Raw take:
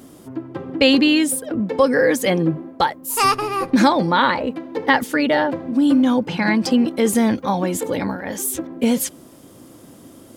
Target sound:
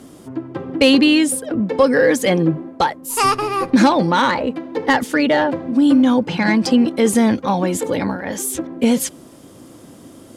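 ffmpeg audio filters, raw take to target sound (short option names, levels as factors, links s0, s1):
-filter_complex "[0:a]lowpass=11000,acrossover=split=630|6400[s0][s1][s2];[s1]asoftclip=type=tanh:threshold=0.224[s3];[s0][s3][s2]amix=inputs=3:normalize=0,volume=1.33"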